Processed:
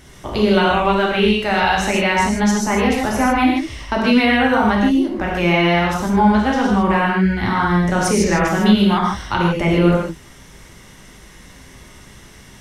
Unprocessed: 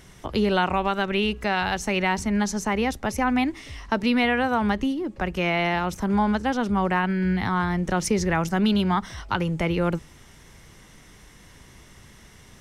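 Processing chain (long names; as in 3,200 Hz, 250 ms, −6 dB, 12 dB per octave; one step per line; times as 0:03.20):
reverb whose tail is shaped and stops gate 180 ms flat, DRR −3.5 dB
level +2.5 dB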